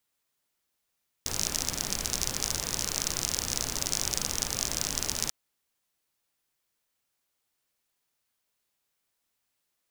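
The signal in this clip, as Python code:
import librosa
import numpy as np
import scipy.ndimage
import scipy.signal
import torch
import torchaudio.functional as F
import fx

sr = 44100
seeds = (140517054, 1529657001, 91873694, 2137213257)

y = fx.rain(sr, seeds[0], length_s=4.04, drops_per_s=48.0, hz=5900.0, bed_db=-4.0)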